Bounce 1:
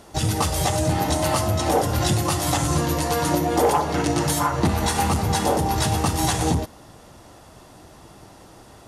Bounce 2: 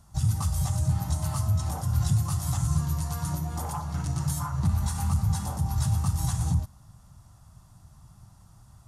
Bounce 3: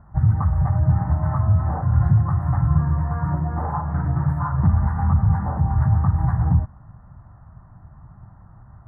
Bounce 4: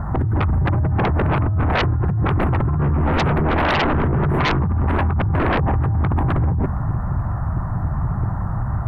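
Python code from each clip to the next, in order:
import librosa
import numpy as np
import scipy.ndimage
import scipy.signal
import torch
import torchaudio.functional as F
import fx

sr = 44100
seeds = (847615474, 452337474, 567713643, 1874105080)

y1 = fx.curve_eq(x, sr, hz=(130.0, 190.0, 300.0, 460.0, 660.0, 1200.0, 1900.0, 2800.0, 7200.0), db=(0, -7, -23, -29, -19, -11, -20, -20, -9))
y2 = scipy.signal.sosfilt(scipy.signal.ellip(4, 1.0, 40, 1800.0, 'lowpass', fs=sr, output='sos'), y1)
y2 = F.gain(torch.from_numpy(y2), 8.5).numpy()
y3 = fx.over_compress(y2, sr, threshold_db=-28.0, ratio=-1.0)
y3 = fx.fold_sine(y3, sr, drive_db=14, ceiling_db=-12.5)
y3 = F.gain(torch.from_numpy(y3), -2.0).numpy()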